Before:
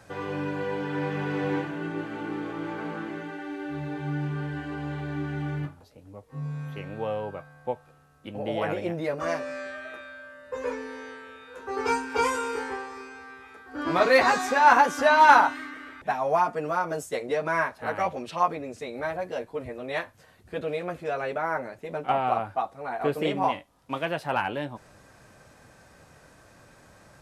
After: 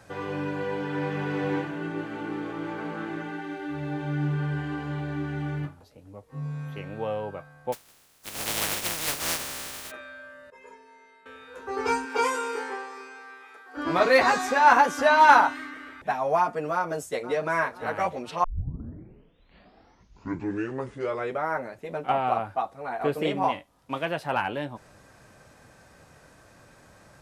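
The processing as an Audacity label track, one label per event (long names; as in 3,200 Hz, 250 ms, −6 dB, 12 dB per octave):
2.930000	4.840000	thrown reverb, RT60 1.2 s, DRR 4 dB
7.720000	9.900000	compressing power law on the bin magnitudes exponent 0.14
10.500000	11.260000	stiff-string resonator 190 Hz, decay 0.28 s, inharmonicity 0.03
12.050000	13.760000	high-pass filter 230 Hz → 490 Hz
16.730000	17.560000	delay throw 500 ms, feedback 55%, level −16 dB
18.440000	18.440000	tape start 3.12 s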